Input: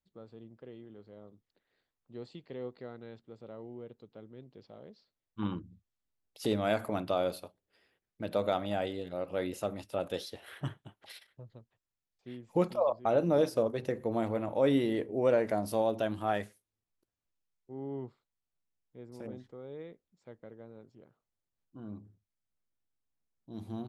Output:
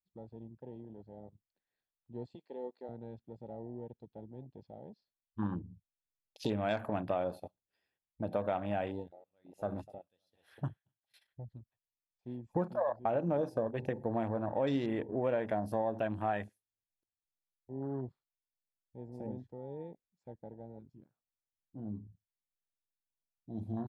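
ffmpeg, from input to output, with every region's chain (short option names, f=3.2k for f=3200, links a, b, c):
-filter_complex "[0:a]asettb=1/sr,asplit=3[a][b][c];[a]atrim=end=2.354[d];[b]atrim=start=2.35:end=2.89,asetpts=PTS-STARTPTS,afade=t=in:d=0.004:c=qsin,afade=t=out:st=0.536:d=0.004:c=qsin,highpass=180,bass=f=250:g=-11,treble=f=4k:g=5[e];[c]atrim=start=2.886[f];[d][e]acrossfade=d=0.004:c1=hsin:c2=qsin[g];[g][f]acrossfade=d=0.004:c1=qsin:c2=hsin,asettb=1/sr,asplit=3[h][i][j];[h]atrim=end=8.914[k];[i]atrim=start=8.91:end=11.14,asetpts=PTS-STARTPTS,afade=t=in:d=0.004:c=qsin,afade=t=out:st=2.226:d=0.004:c=qsin,aecho=1:1:248:0.178,atrim=end_sample=98343,aeval=exprs='val(0)*pow(10,-28*(0.5-0.5*cos(2*PI*1.2*n/s))/20)':c=same[l];[j]atrim=start=11.136[m];[k][l]acrossfade=d=0.004:c1=hsin:c2=qsin[n];[n][m]acrossfade=d=0.004:c1=qsin:c2=hsin,afwtdn=0.00562,aecho=1:1:1.2:0.31,acompressor=threshold=-34dB:ratio=2.5,volume=2.5dB"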